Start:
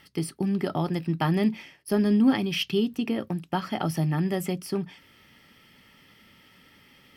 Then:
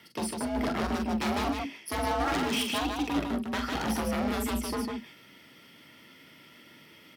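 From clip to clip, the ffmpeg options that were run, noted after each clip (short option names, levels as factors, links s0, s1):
-af "aeval=exprs='0.0531*(abs(mod(val(0)/0.0531+3,4)-2)-1)':c=same,aecho=1:1:43.73|151.6:0.501|0.631,afreqshift=58"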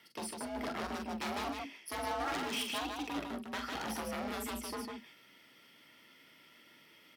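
-af "lowshelf=f=270:g=-9.5,volume=0.501"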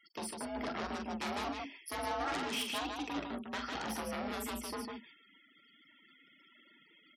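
-af "afftfilt=real='re*gte(hypot(re,im),0.00178)':imag='im*gte(hypot(re,im),0.00178)':win_size=1024:overlap=0.75"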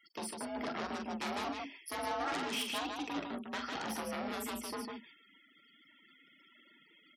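-af "highpass=99"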